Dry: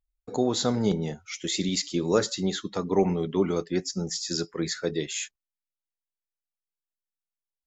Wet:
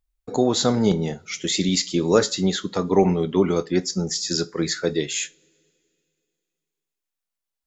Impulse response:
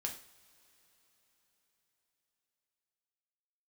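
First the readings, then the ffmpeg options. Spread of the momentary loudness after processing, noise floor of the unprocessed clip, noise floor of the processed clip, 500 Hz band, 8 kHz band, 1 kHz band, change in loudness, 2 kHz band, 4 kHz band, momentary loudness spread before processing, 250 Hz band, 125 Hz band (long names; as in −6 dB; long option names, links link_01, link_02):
7 LU, below −85 dBFS, −85 dBFS, +5.5 dB, can't be measured, +6.0 dB, +5.5 dB, +5.5 dB, +5.5 dB, 7 LU, +5.5 dB, +5.5 dB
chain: -filter_complex "[0:a]asplit=2[link_01][link_02];[1:a]atrim=start_sample=2205,asetrate=79380,aresample=44100,adelay=22[link_03];[link_02][link_03]afir=irnorm=-1:irlink=0,volume=-9dB[link_04];[link_01][link_04]amix=inputs=2:normalize=0,volume=5.5dB"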